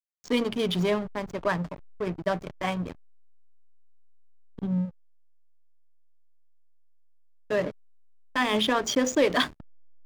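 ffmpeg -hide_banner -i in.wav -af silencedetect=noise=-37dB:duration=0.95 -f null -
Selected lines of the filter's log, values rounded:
silence_start: 2.92
silence_end: 4.59 | silence_duration: 1.67
silence_start: 4.89
silence_end: 7.50 | silence_duration: 2.61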